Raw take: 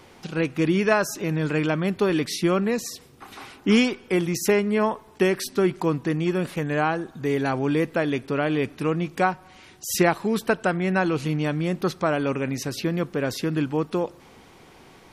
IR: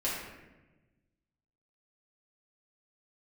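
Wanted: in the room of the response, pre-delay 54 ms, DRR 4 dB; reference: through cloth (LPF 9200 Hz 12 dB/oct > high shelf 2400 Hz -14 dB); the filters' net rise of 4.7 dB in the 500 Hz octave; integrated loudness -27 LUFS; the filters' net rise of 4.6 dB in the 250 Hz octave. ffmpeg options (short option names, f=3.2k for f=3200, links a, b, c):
-filter_complex "[0:a]equalizer=f=250:t=o:g=5,equalizer=f=500:t=o:g=5,asplit=2[a][b];[1:a]atrim=start_sample=2205,adelay=54[c];[b][c]afir=irnorm=-1:irlink=0,volume=-11dB[d];[a][d]amix=inputs=2:normalize=0,lowpass=9.2k,highshelf=f=2.4k:g=-14,volume=-8dB"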